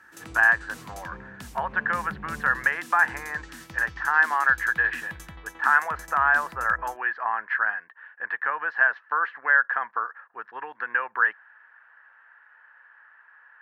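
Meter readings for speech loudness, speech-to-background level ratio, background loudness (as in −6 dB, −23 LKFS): −24.0 LKFS, 19.5 dB, −43.5 LKFS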